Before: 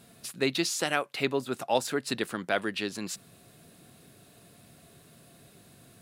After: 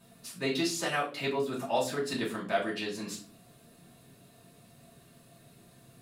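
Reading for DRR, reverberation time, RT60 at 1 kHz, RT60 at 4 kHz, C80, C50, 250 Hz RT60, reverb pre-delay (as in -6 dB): -7.0 dB, 0.45 s, 0.35 s, 0.30 s, 14.5 dB, 9.0 dB, 0.60 s, 3 ms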